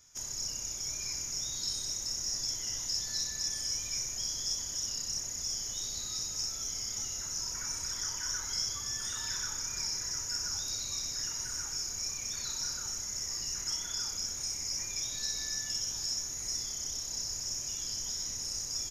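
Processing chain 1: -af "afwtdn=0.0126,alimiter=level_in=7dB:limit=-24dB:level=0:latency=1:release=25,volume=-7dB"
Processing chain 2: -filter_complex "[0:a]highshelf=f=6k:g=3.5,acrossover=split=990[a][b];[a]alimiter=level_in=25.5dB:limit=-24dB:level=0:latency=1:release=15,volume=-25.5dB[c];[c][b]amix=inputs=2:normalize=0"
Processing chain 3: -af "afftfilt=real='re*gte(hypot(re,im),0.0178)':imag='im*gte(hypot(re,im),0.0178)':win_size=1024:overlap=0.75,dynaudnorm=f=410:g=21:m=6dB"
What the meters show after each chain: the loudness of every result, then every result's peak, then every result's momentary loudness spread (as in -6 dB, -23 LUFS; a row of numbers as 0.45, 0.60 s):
-42.0, -31.5, -29.5 LUFS; -31.0, -18.5, -14.5 dBFS; 11, 2, 8 LU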